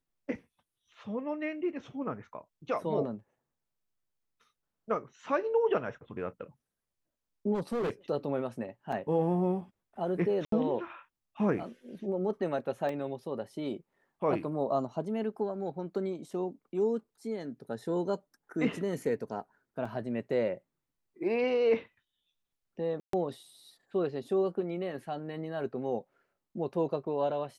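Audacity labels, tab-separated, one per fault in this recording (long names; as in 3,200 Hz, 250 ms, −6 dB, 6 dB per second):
7.540000	7.900000	clipping −28.5 dBFS
8.920000	8.920000	drop-out 4.1 ms
10.450000	10.520000	drop-out 73 ms
12.890000	12.890000	drop-out 2.2 ms
19.850000	19.850000	drop-out 4.5 ms
23.000000	23.130000	drop-out 133 ms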